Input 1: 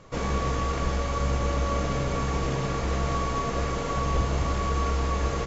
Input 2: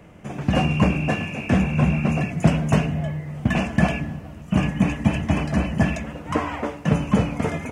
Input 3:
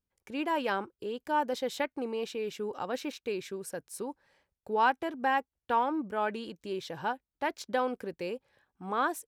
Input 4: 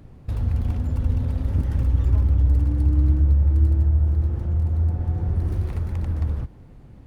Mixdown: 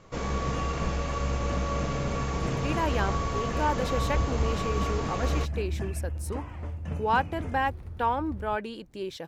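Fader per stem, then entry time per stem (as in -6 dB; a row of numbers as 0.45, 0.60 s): -3.0, -18.5, +1.0, -14.5 dB; 0.00, 0.00, 2.30, 2.10 s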